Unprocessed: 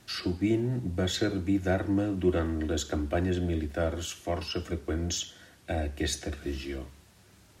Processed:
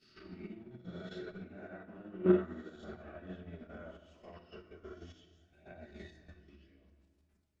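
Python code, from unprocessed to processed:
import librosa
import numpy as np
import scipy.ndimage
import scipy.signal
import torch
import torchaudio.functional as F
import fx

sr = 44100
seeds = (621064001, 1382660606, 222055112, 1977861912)

y = fx.spec_swells(x, sr, rise_s=0.92)
y = fx.high_shelf(y, sr, hz=10000.0, db=-4.0)
y = y + 10.0 ** (-17.5 / 20.0) * np.pad(y, (int(191 * sr / 1000.0), 0))[:len(y)]
y = fx.chorus_voices(y, sr, voices=2, hz=0.35, base_ms=25, depth_ms=3.2, mix_pct=65)
y = fx.dynamic_eq(y, sr, hz=1200.0, q=1.5, threshold_db=-48.0, ratio=4.0, max_db=6)
y = fx.env_lowpass_down(y, sr, base_hz=2700.0, full_db=-28.0)
y = fx.level_steps(y, sr, step_db=11)
y = fx.hum_notches(y, sr, base_hz=50, count=7)
y = y + 0.31 * np.pad(y, (int(4.7 * sr / 1000.0), 0))[:len(y)]
y = fx.room_shoebox(y, sr, seeds[0], volume_m3=1300.0, walls='mixed', distance_m=1.2)
y = fx.upward_expand(y, sr, threshold_db=-35.0, expansion=2.5)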